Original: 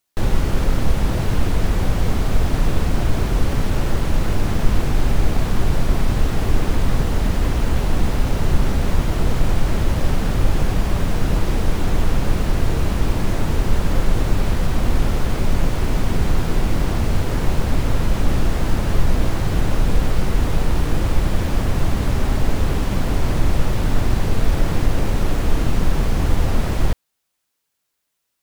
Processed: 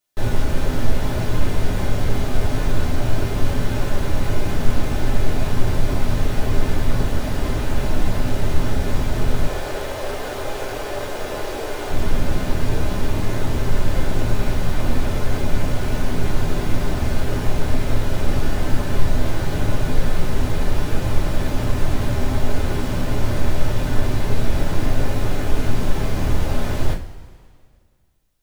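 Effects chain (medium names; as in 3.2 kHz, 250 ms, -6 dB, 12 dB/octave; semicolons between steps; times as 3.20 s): 9.46–11.91 s: resonant low shelf 290 Hz -13 dB, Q 1.5; two-slope reverb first 0.28 s, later 2 s, from -19 dB, DRR -5 dB; trim -7 dB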